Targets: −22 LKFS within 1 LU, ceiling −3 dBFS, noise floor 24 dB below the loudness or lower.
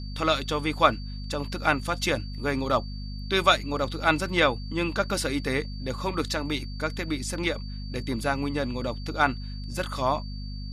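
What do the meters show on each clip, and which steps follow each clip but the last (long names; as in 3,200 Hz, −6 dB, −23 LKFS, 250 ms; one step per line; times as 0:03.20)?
mains hum 50 Hz; hum harmonics up to 250 Hz; level of the hum −33 dBFS; interfering tone 4,600 Hz; level of the tone −45 dBFS; integrated loudness −27.0 LKFS; sample peak −4.5 dBFS; target loudness −22.0 LKFS
→ hum removal 50 Hz, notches 5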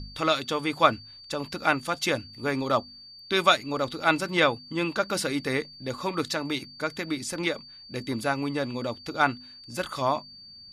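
mains hum none found; interfering tone 4,600 Hz; level of the tone −45 dBFS
→ notch filter 4,600 Hz, Q 30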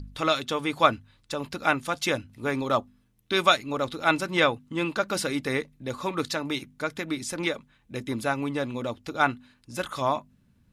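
interfering tone none found; integrated loudness −27.5 LKFS; sample peak −4.0 dBFS; target loudness −22.0 LKFS
→ level +5.5 dB
brickwall limiter −3 dBFS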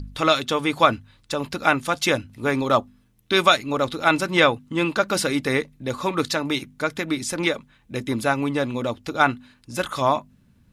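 integrated loudness −22.5 LKFS; sample peak −3.0 dBFS; background noise floor −59 dBFS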